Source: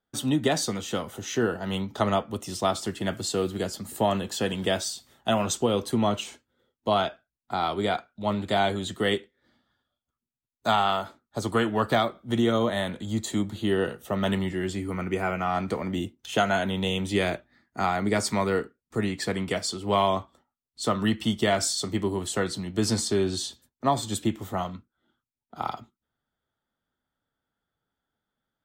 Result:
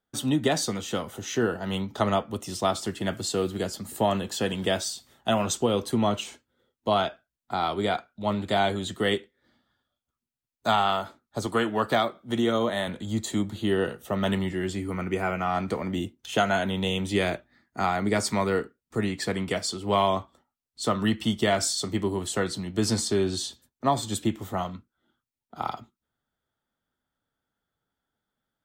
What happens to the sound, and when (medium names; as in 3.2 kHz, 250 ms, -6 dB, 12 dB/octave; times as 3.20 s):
11.46–12.88 s: high-pass 170 Hz 6 dB/octave